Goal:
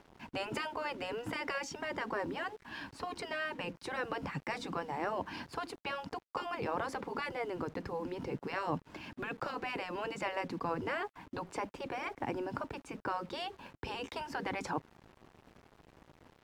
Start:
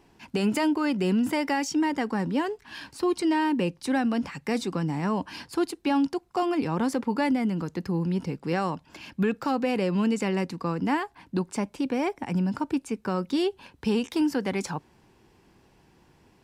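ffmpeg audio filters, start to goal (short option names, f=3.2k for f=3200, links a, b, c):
-af "afftfilt=real='re*lt(hypot(re,im),0.178)':imag='im*lt(hypot(re,im),0.178)':win_size=1024:overlap=0.75,acrusher=bits=8:mix=0:aa=0.000001,lowpass=f=1.5k:p=1,volume=1dB" -ar 48000 -c:a libvorbis -b:a 128k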